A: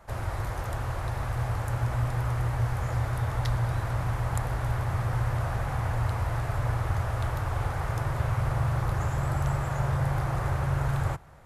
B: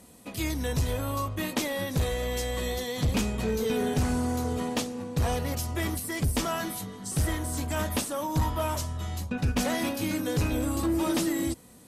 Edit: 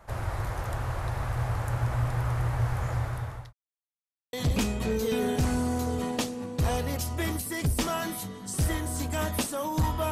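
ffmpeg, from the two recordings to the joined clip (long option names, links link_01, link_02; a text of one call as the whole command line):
ffmpeg -i cue0.wav -i cue1.wav -filter_complex "[0:a]apad=whole_dur=10.11,atrim=end=10.11,asplit=2[link_01][link_02];[link_01]atrim=end=3.53,asetpts=PTS-STARTPTS,afade=type=out:start_time=2.71:duration=0.82:curve=qsin[link_03];[link_02]atrim=start=3.53:end=4.33,asetpts=PTS-STARTPTS,volume=0[link_04];[1:a]atrim=start=2.91:end=8.69,asetpts=PTS-STARTPTS,afade=type=in:duration=0.004:curve=hsin[link_05];[link_03][link_04][link_05]concat=n=3:v=0:a=1" out.wav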